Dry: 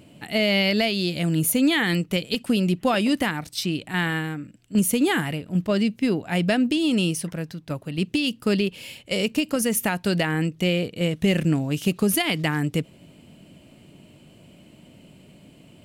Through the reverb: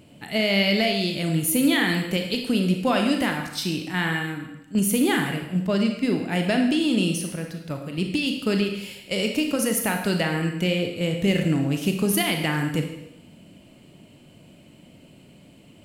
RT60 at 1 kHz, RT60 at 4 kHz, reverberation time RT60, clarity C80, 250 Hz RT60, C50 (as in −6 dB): 0.85 s, 0.80 s, 0.85 s, 8.0 dB, 0.80 s, 5.5 dB